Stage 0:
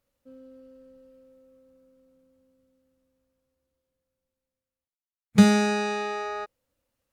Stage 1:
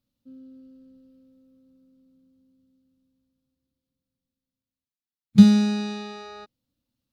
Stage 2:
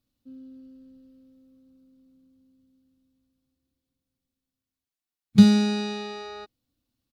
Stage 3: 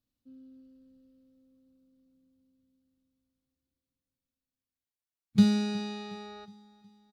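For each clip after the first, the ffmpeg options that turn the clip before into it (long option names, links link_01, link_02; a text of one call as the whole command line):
ffmpeg -i in.wav -af "equalizer=frequency=125:width_type=o:width=1:gain=7,equalizer=frequency=250:width_type=o:width=1:gain=11,equalizer=frequency=500:width_type=o:width=1:gain=-9,equalizer=frequency=1000:width_type=o:width=1:gain=-3,equalizer=frequency=2000:width_type=o:width=1:gain=-7,equalizer=frequency=4000:width_type=o:width=1:gain=8,equalizer=frequency=8000:width_type=o:width=1:gain=-5,volume=-4.5dB" out.wav
ffmpeg -i in.wav -af "aecho=1:1:2.7:0.36,volume=1.5dB" out.wav
ffmpeg -i in.wav -af "aecho=1:1:365|730|1095|1460:0.1|0.049|0.024|0.0118,volume=-7.5dB" out.wav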